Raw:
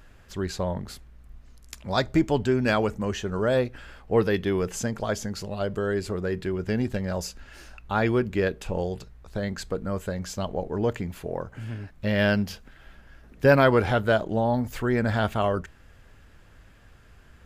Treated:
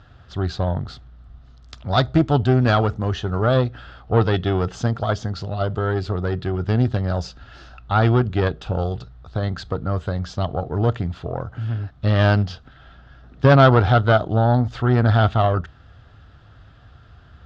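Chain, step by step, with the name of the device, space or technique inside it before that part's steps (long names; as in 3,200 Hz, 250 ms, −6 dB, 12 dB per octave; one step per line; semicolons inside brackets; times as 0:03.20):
guitar amplifier (tube saturation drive 14 dB, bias 0.7; bass and treble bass +13 dB, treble +10 dB; loudspeaker in its box 77–4,300 Hz, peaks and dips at 200 Hz −9 dB, 720 Hz +9 dB, 1,300 Hz +10 dB, 2,300 Hz −6 dB, 3,500 Hz +5 dB)
level +3.5 dB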